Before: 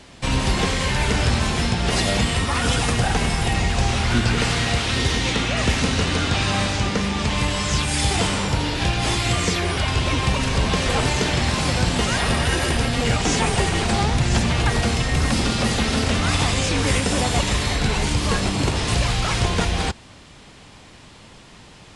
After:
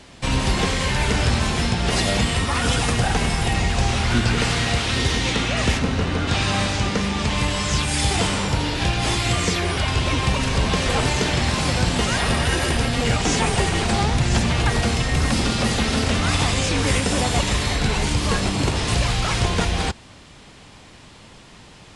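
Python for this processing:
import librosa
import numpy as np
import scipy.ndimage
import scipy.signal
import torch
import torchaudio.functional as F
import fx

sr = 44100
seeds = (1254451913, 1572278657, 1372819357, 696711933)

y = fx.high_shelf(x, sr, hz=2700.0, db=-11.0, at=(5.77, 6.27), fade=0.02)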